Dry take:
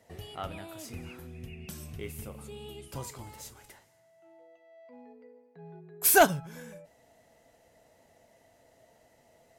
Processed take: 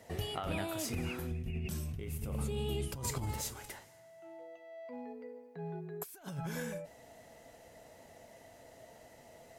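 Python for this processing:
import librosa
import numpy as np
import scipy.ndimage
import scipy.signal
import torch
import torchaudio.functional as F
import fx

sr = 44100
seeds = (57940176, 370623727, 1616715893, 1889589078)

y = fx.low_shelf(x, sr, hz=220.0, db=10.0, at=(1.31, 3.41))
y = fx.over_compress(y, sr, threshold_db=-40.0, ratio=-1.0)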